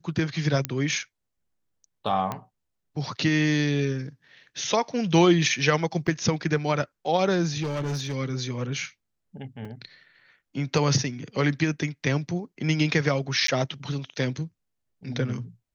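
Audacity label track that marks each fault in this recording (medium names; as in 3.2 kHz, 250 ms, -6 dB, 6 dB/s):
0.650000	0.650000	pop -9 dBFS
2.320000	2.320000	pop -16 dBFS
6.070000	6.070000	dropout 4.7 ms
7.620000	8.150000	clipped -25 dBFS
9.650000	9.650000	dropout 3.8 ms
13.470000	13.480000	dropout 13 ms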